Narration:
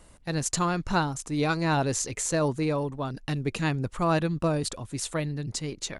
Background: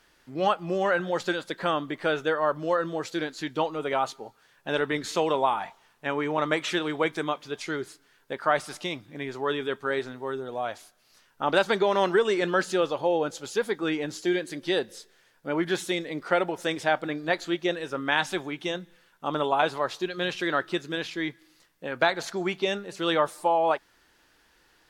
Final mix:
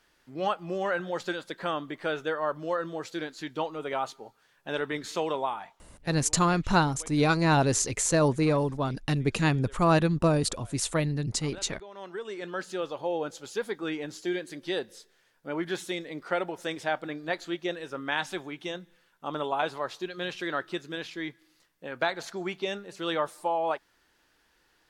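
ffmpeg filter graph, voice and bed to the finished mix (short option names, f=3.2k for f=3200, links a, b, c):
-filter_complex "[0:a]adelay=5800,volume=2.5dB[a];[1:a]volume=13.5dB,afade=t=out:st=5.27:d=0.83:silence=0.11885,afade=t=in:st=11.91:d=1.32:silence=0.125893[b];[a][b]amix=inputs=2:normalize=0"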